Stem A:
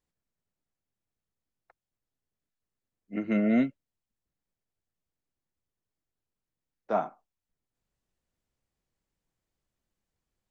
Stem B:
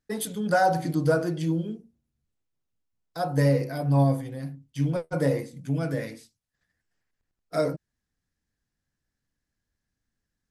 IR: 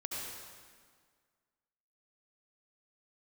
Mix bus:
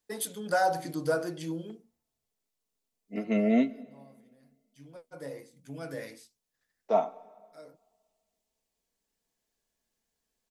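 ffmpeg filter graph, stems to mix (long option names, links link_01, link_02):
-filter_complex "[0:a]equalizer=frequency=1500:width=2.5:gain=-14.5,aecho=1:1:4.5:0.55,volume=2dB,asplit=3[link_01][link_02][link_03];[link_02]volume=-20dB[link_04];[1:a]volume=-4dB[link_05];[link_03]apad=whole_len=463294[link_06];[link_05][link_06]sidechaincompress=threshold=-45dB:ratio=16:attack=8.3:release=1320[link_07];[2:a]atrim=start_sample=2205[link_08];[link_04][link_08]afir=irnorm=-1:irlink=0[link_09];[link_01][link_07][link_09]amix=inputs=3:normalize=0,bass=frequency=250:gain=-11,treble=frequency=4000:gain=3"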